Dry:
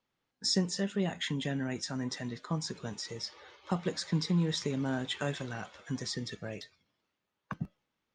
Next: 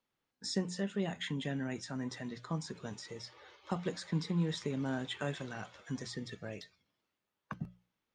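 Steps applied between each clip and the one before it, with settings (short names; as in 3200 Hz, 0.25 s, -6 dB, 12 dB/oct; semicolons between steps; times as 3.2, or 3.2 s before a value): notches 60/120/180 Hz; dynamic EQ 5500 Hz, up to -7 dB, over -49 dBFS, Q 1.3; gain -3 dB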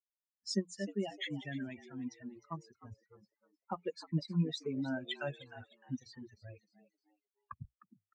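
per-bin expansion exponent 3; low-pass opened by the level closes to 610 Hz, open at -39.5 dBFS; frequency-shifting echo 0.306 s, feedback 32%, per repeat +100 Hz, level -16 dB; gain +4.5 dB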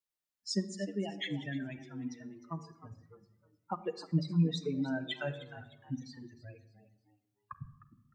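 reverb RT60 0.95 s, pre-delay 6 ms, DRR 9 dB; gain +1.5 dB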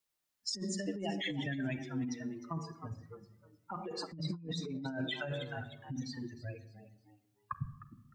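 negative-ratio compressor -40 dBFS, ratio -1; gain +2 dB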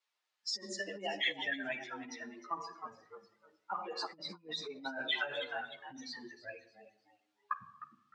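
BPF 660–4300 Hz; ensemble effect; gain +9 dB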